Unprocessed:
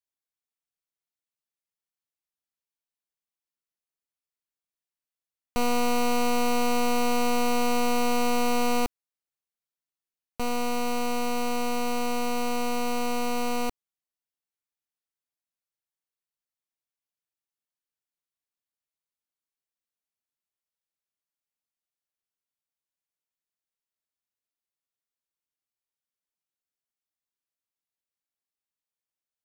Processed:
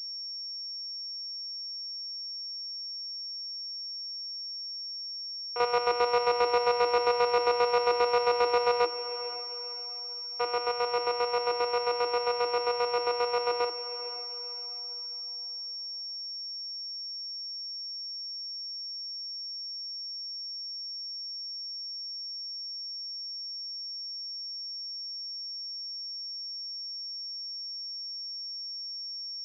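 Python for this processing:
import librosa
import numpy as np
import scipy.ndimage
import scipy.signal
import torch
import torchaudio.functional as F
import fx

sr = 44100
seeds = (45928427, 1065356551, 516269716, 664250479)

y = fx.chopper(x, sr, hz=7.5, depth_pct=65, duty_pct=35)
y = scipy.signal.sosfilt(scipy.signal.cheby1(6, 6, 320.0, 'highpass', fs=sr, output='sos'), y)
y = fx.spec_gate(y, sr, threshold_db=-30, keep='strong')
y = fx.echo_diffused(y, sr, ms=499, feedback_pct=41, wet_db=-13.0)
y = fx.pwm(y, sr, carrier_hz=5500.0)
y = y * 10.0 ** (7.0 / 20.0)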